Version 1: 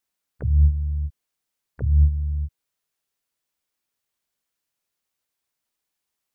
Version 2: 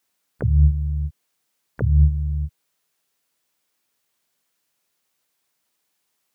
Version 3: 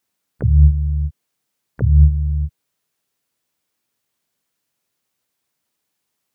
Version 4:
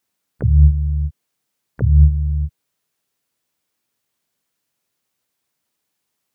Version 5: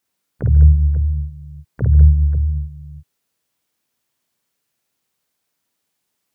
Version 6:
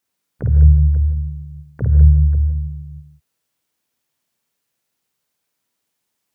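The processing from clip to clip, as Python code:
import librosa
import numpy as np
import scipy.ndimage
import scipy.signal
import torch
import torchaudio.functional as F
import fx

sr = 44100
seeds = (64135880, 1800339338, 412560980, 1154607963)

y1 = scipy.signal.sosfilt(scipy.signal.butter(2, 110.0, 'highpass', fs=sr, output='sos'), x)
y1 = y1 * 10.0 ** (8.5 / 20.0)
y2 = fx.low_shelf(y1, sr, hz=320.0, db=7.5)
y2 = y2 * 10.0 ** (-2.5 / 20.0)
y3 = y2
y4 = fx.echo_multitap(y3, sr, ms=(52, 142, 201, 532, 540), db=(-3.5, -15.5, -8.0, -19.5, -12.5))
y4 = y4 * 10.0 ** (-1.0 / 20.0)
y5 = fx.rev_gated(y4, sr, seeds[0], gate_ms=190, shape='rising', drr_db=8.5)
y5 = y5 * 10.0 ** (-1.5 / 20.0)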